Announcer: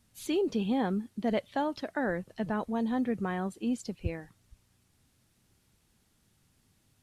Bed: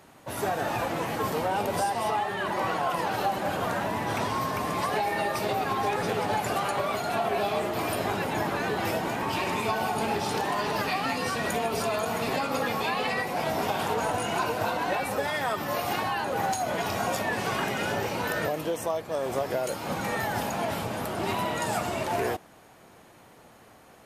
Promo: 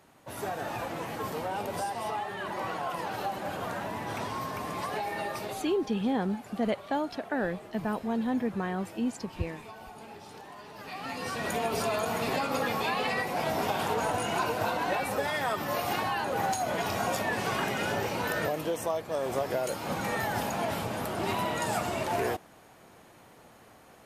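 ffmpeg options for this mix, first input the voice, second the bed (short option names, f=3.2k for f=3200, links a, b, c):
-filter_complex "[0:a]adelay=5350,volume=0.5dB[a];[1:a]volume=11dB,afade=t=out:st=5.33:d=0.44:silence=0.237137,afade=t=in:st=10.76:d=0.93:silence=0.141254[b];[a][b]amix=inputs=2:normalize=0"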